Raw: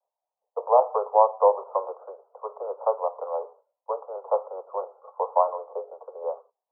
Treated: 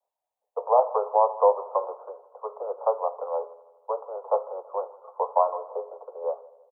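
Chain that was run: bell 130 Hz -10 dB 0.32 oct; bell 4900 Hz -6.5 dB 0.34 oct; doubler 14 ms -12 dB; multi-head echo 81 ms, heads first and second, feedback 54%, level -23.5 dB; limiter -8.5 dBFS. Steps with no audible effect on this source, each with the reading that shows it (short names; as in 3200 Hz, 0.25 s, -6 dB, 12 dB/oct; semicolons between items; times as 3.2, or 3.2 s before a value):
bell 130 Hz: input band starts at 360 Hz; bell 4900 Hz: input band ends at 1300 Hz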